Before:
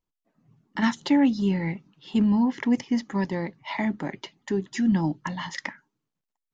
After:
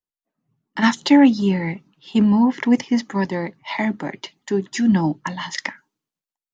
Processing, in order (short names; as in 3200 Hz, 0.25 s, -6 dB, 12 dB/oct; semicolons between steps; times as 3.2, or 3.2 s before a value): low shelf 120 Hz -10.5 dB; three-band expander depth 40%; gain +7.5 dB